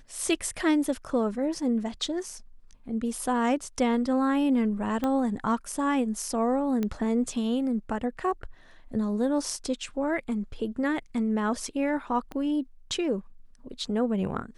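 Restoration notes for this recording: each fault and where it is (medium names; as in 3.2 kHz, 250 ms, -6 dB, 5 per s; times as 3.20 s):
5.04 s: pop -16 dBFS
6.83 s: pop -17 dBFS
12.32 s: pop -24 dBFS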